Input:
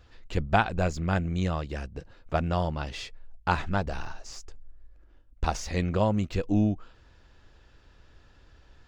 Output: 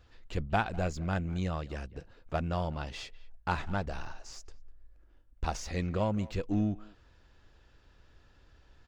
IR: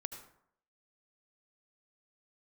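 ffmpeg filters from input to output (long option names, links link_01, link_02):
-filter_complex "[0:a]asplit=2[link_01][link_02];[link_02]asoftclip=type=hard:threshold=-24.5dB,volume=-7.5dB[link_03];[link_01][link_03]amix=inputs=2:normalize=0,asplit=2[link_04][link_05];[link_05]adelay=200,highpass=300,lowpass=3400,asoftclip=type=hard:threshold=-17dB,volume=-19dB[link_06];[link_04][link_06]amix=inputs=2:normalize=0,volume=-7.5dB"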